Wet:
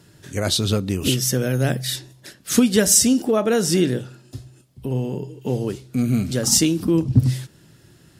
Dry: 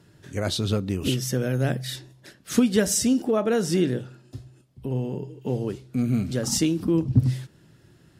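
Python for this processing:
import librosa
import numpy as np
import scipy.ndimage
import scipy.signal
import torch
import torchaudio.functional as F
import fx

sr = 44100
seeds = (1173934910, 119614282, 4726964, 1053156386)

y = fx.high_shelf(x, sr, hz=4000.0, db=8.0)
y = y * librosa.db_to_amplitude(3.5)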